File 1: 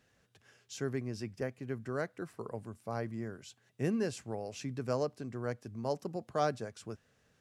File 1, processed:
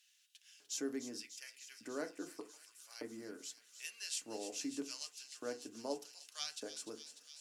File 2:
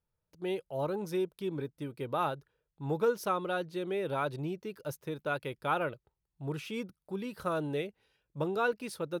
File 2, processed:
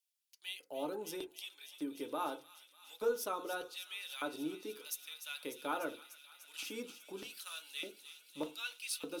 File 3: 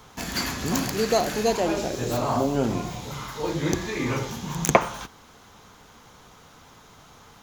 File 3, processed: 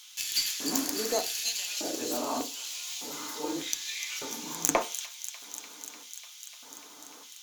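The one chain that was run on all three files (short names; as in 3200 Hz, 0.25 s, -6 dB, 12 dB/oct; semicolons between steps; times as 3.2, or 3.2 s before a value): LFO high-pass square 0.83 Hz 260–2900 Hz; in parallel at +1.5 dB: compressor, threshold -39 dBFS; on the sum: short-mantissa float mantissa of 8-bit; tone controls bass -10 dB, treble +12 dB; added harmonics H 2 -11 dB, 8 -27 dB, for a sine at 8 dBFS; on a send: thin delay 0.297 s, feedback 80%, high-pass 2600 Hz, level -10 dB; on the sum: FDN reverb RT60 0.31 s, low-frequency decay 1.05×, high-frequency decay 0.35×, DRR 5.5 dB; gain -11.5 dB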